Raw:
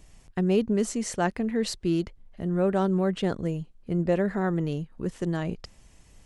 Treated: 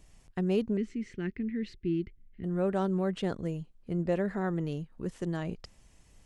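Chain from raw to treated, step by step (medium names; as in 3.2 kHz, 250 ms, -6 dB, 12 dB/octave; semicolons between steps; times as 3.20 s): 0.77–2.44 s: FFT filter 380 Hz 0 dB, 610 Hz -25 dB, 1 kHz -21 dB, 2.1 kHz 0 dB, 9.6 kHz -29 dB; trim -5 dB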